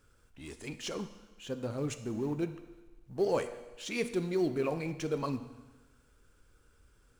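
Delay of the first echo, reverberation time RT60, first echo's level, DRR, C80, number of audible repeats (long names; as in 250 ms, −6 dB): no echo audible, 1.2 s, no echo audible, 9.5 dB, 13.5 dB, no echo audible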